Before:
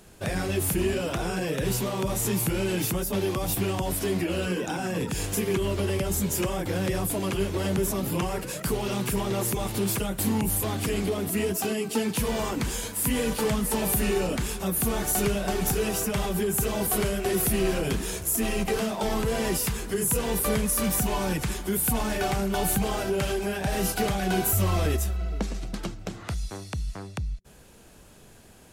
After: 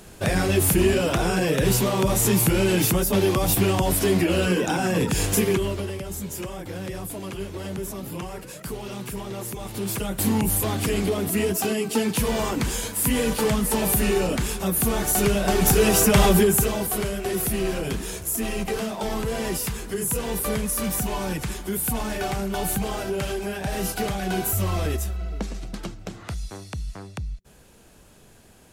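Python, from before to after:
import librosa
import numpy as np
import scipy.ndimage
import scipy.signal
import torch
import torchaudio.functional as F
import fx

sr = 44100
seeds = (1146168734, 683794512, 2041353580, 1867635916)

y = fx.gain(x, sr, db=fx.line((5.42, 6.5), (5.97, -5.5), (9.59, -5.5), (10.25, 3.5), (15.15, 3.5), (16.29, 12.0), (16.88, -0.5)))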